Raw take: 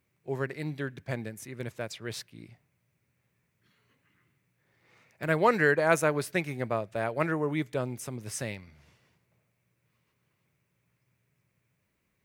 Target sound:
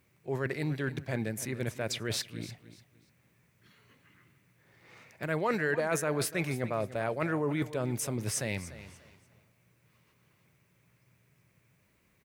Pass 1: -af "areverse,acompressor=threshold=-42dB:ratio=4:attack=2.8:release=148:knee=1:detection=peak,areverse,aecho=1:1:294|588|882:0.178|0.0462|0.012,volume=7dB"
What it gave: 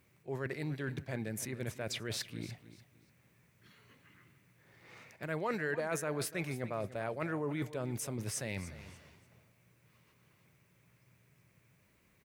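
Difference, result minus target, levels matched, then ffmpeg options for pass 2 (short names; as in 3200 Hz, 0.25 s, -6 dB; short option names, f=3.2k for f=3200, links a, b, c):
compressor: peak gain reduction +5.5 dB
-af "areverse,acompressor=threshold=-34.5dB:ratio=4:attack=2.8:release=148:knee=1:detection=peak,areverse,aecho=1:1:294|588|882:0.178|0.0462|0.012,volume=7dB"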